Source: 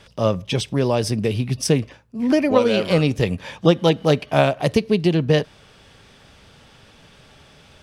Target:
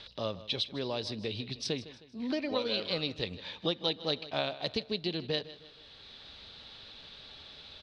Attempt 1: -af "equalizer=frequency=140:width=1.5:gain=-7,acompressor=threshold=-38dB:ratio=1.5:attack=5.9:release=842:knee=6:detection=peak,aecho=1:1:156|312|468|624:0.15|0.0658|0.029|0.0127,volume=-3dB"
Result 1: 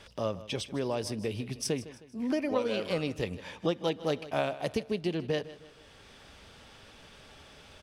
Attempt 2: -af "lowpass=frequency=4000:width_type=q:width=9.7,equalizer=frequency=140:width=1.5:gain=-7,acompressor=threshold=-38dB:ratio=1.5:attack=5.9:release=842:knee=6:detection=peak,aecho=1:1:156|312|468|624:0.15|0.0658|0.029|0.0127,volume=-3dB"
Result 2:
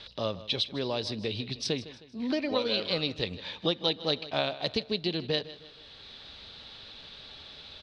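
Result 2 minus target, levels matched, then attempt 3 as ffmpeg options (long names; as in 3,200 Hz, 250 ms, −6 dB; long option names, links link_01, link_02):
downward compressor: peak gain reduction −3.5 dB
-af "lowpass=frequency=4000:width_type=q:width=9.7,equalizer=frequency=140:width=1.5:gain=-7,acompressor=threshold=-48dB:ratio=1.5:attack=5.9:release=842:knee=6:detection=peak,aecho=1:1:156|312|468|624:0.15|0.0658|0.029|0.0127,volume=-3dB"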